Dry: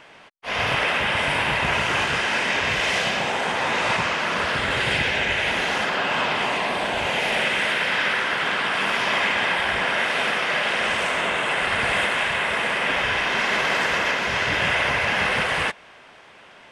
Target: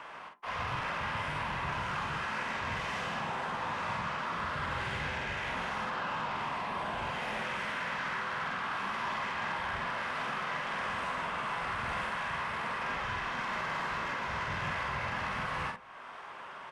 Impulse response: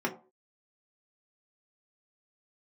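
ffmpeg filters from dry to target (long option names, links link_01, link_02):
-filter_complex "[0:a]equalizer=frequency=1100:width_type=o:width=1.1:gain=14,acrossover=split=190[link_01][link_02];[link_02]acompressor=threshold=-39dB:ratio=2[link_03];[link_01][link_03]amix=inputs=2:normalize=0,asoftclip=type=tanh:threshold=-25.5dB,asplit=2[link_04][link_05];[link_05]adelay=47,volume=-5dB[link_06];[link_04][link_06]amix=inputs=2:normalize=0,asplit=2[link_07][link_08];[1:a]atrim=start_sample=2205,adelay=16[link_09];[link_08][link_09]afir=irnorm=-1:irlink=0,volume=-17dB[link_10];[link_07][link_10]amix=inputs=2:normalize=0,volume=-5.5dB"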